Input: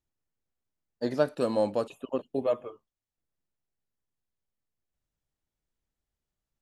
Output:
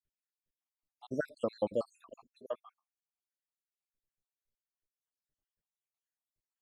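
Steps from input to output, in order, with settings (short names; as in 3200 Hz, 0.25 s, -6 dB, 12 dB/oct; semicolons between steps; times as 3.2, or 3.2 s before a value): random spectral dropouts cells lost 78%; 2.3–2.7 HPF 950 Hz 6 dB/oct; gain -3 dB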